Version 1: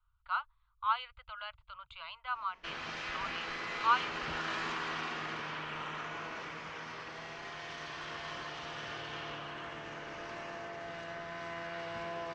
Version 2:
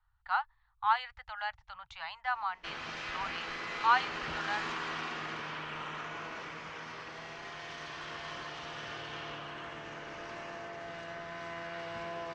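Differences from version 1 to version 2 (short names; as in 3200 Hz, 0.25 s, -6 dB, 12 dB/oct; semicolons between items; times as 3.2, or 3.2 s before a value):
speech: remove fixed phaser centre 1200 Hz, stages 8; master: remove LPF 10000 Hz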